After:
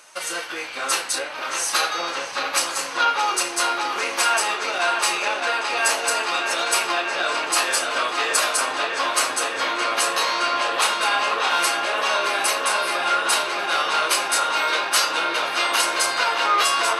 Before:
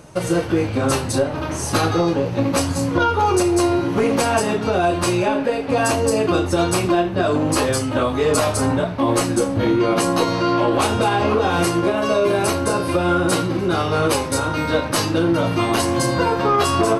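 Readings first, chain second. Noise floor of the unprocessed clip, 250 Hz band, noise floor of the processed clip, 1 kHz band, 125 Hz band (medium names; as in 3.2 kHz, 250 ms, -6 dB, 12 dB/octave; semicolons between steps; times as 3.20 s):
-25 dBFS, -20.0 dB, -31 dBFS, 0.0 dB, under -30 dB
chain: high-pass 1.4 kHz 12 dB/octave; treble shelf 12 kHz -3.5 dB; on a send: feedback echo behind a low-pass 618 ms, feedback 85%, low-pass 3.9 kHz, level -5 dB; on the sum: trim +4 dB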